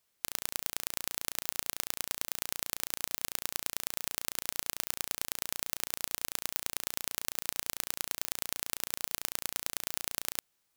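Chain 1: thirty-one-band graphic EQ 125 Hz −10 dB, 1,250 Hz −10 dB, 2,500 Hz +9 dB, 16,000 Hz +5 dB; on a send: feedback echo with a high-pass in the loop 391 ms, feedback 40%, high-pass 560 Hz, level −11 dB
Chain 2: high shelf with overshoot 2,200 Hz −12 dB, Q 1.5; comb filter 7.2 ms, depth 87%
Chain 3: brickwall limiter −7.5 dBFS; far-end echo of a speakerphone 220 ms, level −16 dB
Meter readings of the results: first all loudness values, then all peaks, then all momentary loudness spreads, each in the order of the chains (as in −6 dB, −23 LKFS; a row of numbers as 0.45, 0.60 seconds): −32.5, −41.5, −37.5 LKFS; −1.5, −14.0, −7.5 dBFS; 1, 1, 1 LU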